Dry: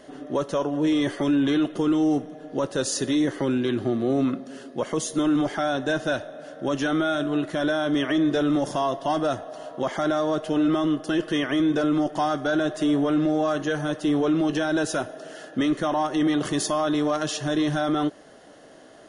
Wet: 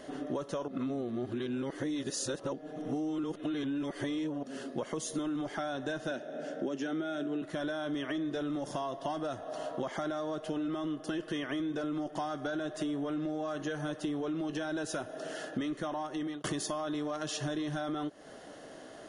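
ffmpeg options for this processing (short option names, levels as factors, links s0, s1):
-filter_complex "[0:a]asettb=1/sr,asplit=3[s0][s1][s2];[s0]atrim=end=6.114[s3];[s1]atrim=start=6.11:end=7.42,asetpts=PTS-STARTPTS,afade=t=in:d=0.004:c=qsin,afade=t=out:st=1.306:d=0.004:c=qsin,highpass=f=160:w=0.5412,highpass=f=160:w=1.3066,equalizer=f=170:t=q:w=4:g=4,equalizer=f=240:t=q:w=4:g=5,equalizer=f=390:t=q:w=4:g=7,equalizer=f=1100:t=q:w=4:g=-8,equalizer=f=4000:t=q:w=4:g=-5,lowpass=f=8500:w=0.5412,lowpass=f=8500:w=1.3066[s4];[s2]atrim=start=7.416[s5];[s3][s4]acrossfade=d=0.004:c1=hsin:c2=qsin[s6];[s6][s5]acrossfade=d=0.004:c1=qsin:c2=hsin,asplit=4[s7][s8][s9][s10];[s7]atrim=end=0.682[s11];[s8]atrim=start=0.678:end=4.432,asetpts=PTS-STARTPTS,areverse[s12];[s9]atrim=start=4.428:end=16.44,asetpts=PTS-STARTPTS,afade=t=out:st=11.452:d=0.56[s13];[s10]atrim=start=16.44,asetpts=PTS-STARTPTS,afade=t=in:d=0.004:c=hsin[s14];[s11][s12]acrossfade=d=0.004:c1=hsin:c2=hsin[s15];[s13][s14]concat=n=2:v=0:a=1[s16];[s15][s16]acrossfade=d=0.004:c1=hsin:c2=hsin,acompressor=threshold=0.0251:ratio=10"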